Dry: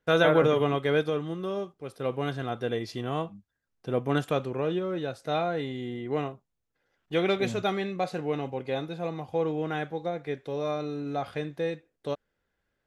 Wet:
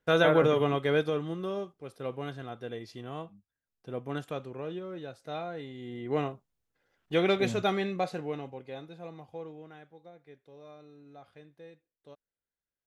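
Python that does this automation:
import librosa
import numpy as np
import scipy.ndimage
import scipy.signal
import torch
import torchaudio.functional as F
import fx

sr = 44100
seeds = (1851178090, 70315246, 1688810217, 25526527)

y = fx.gain(x, sr, db=fx.line((1.41, -1.5), (2.56, -9.0), (5.74, -9.0), (6.16, 0.0), (7.94, 0.0), (8.67, -11.0), (9.23, -11.0), (9.8, -20.0)))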